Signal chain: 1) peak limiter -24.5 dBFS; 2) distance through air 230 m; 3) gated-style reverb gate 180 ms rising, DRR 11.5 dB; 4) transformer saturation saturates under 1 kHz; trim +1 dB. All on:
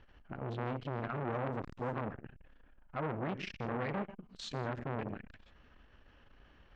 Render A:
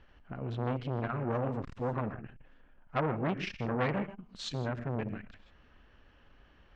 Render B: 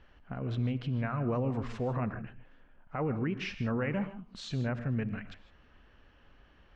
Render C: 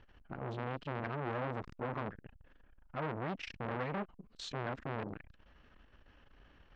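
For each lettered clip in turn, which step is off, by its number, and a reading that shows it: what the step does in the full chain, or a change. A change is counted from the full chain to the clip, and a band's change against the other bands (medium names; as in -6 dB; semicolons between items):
1, 1 kHz band -2.0 dB; 4, crest factor change -5.5 dB; 3, 2 kHz band +2.0 dB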